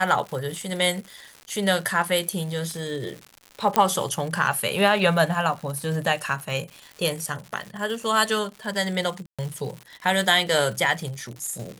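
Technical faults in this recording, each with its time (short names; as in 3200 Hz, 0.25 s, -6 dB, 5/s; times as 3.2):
crackle 170/s -32 dBFS
2.71 pop -21 dBFS
3.76 pop -4 dBFS
9.26–9.39 gap 0.126 s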